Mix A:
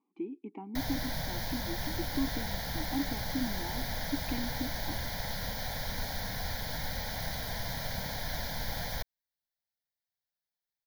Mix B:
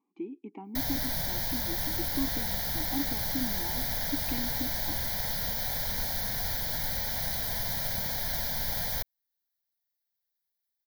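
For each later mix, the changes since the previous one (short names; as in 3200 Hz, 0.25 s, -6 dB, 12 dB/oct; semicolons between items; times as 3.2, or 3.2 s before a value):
master: add high shelf 7100 Hz +12 dB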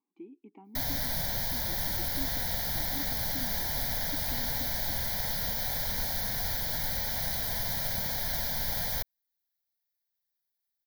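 speech -9.0 dB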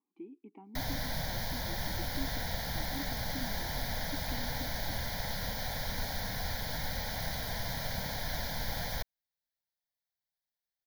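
master: add high shelf 7100 Hz -12 dB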